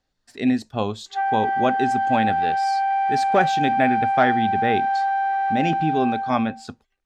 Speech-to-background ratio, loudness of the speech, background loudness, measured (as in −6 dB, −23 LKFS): −2.5 dB, −24.5 LKFS, −22.0 LKFS